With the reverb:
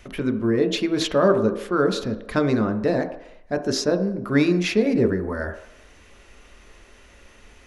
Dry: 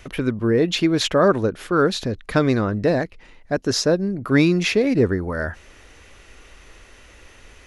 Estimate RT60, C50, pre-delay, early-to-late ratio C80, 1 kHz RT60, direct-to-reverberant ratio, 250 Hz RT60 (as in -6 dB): 0.75 s, 10.5 dB, 3 ms, 13.0 dB, 0.80 s, 6.0 dB, 0.55 s